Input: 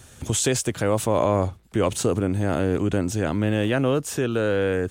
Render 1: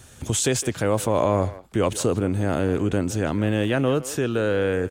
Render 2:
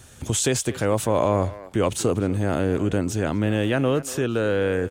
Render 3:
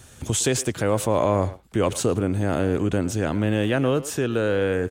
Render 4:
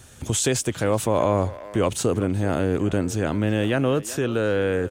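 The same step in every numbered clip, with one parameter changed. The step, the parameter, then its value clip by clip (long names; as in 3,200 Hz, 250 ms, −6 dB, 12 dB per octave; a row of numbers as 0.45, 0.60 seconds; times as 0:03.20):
far-end echo of a speakerphone, delay time: 160, 240, 110, 380 milliseconds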